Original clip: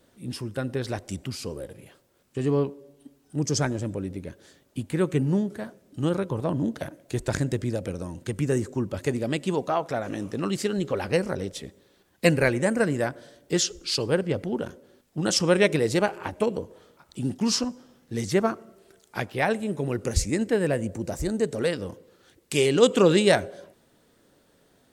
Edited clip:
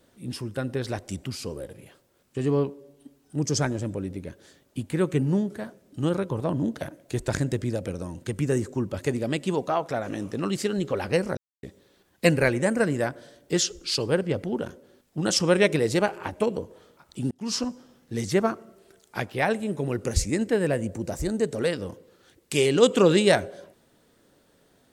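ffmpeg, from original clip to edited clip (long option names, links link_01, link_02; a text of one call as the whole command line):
ffmpeg -i in.wav -filter_complex "[0:a]asplit=4[link_01][link_02][link_03][link_04];[link_01]atrim=end=11.37,asetpts=PTS-STARTPTS,afade=type=out:start_time=11.366:duration=0.004:curve=hsin[link_05];[link_02]atrim=start=11.37:end=11.63,asetpts=PTS-STARTPTS,volume=0[link_06];[link_03]atrim=start=11.63:end=17.31,asetpts=PTS-STARTPTS,afade=type=in:duration=0.004:curve=hsin,afade=type=out:start_time=5.676:duration=0.004:curve=hsin[link_07];[link_04]atrim=start=17.31,asetpts=PTS-STARTPTS,afade=type=in:duration=0.35[link_08];[link_05][link_06][link_07][link_08]concat=n=4:v=0:a=1" out.wav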